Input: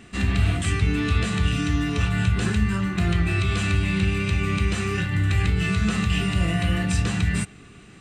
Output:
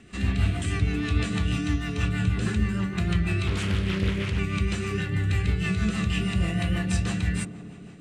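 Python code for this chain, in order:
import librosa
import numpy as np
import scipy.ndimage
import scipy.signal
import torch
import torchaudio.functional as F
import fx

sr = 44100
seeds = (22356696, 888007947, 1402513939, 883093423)

y = fx.echo_wet_bandpass(x, sr, ms=88, feedback_pct=83, hz=420.0, wet_db=-8.5)
y = fx.rotary(y, sr, hz=6.3)
y = fx.doppler_dist(y, sr, depth_ms=0.85, at=(3.47, 4.39))
y = F.gain(torch.from_numpy(y), -2.0).numpy()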